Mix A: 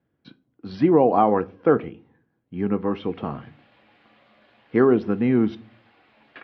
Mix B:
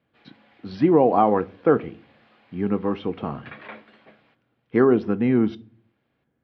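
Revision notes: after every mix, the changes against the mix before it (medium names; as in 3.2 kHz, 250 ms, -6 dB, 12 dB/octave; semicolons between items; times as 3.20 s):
background: entry -2.90 s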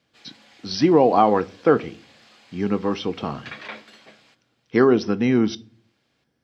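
master: remove distance through air 490 m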